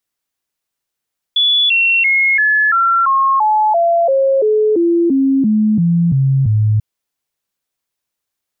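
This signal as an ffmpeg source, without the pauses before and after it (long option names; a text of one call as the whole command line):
ffmpeg -f lavfi -i "aevalsrc='0.335*clip(min(mod(t,0.34),0.34-mod(t,0.34))/0.005,0,1)*sin(2*PI*3430*pow(2,-floor(t/0.34)/3)*mod(t,0.34))':duration=5.44:sample_rate=44100" out.wav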